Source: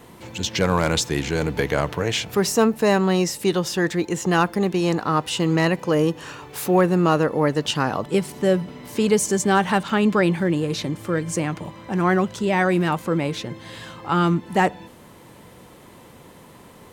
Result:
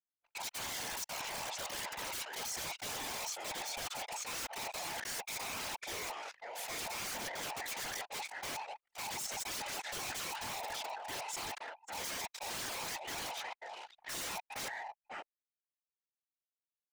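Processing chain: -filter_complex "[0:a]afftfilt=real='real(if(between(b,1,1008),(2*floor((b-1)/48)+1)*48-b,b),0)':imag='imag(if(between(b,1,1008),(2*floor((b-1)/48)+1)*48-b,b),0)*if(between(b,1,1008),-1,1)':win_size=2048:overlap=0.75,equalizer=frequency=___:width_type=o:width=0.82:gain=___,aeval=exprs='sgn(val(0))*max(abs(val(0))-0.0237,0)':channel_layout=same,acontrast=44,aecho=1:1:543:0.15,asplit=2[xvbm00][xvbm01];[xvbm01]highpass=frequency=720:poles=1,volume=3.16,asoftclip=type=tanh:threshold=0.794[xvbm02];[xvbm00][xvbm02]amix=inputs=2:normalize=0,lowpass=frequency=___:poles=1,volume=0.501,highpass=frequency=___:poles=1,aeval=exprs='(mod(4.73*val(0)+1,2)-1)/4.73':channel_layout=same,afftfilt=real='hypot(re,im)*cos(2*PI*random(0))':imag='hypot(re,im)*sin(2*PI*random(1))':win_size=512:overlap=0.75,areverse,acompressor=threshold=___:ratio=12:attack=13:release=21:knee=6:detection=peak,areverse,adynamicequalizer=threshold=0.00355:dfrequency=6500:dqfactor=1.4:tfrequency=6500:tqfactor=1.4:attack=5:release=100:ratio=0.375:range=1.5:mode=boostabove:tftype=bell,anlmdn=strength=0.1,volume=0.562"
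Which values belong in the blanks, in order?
2000, 3, 4600, 1200, 0.0126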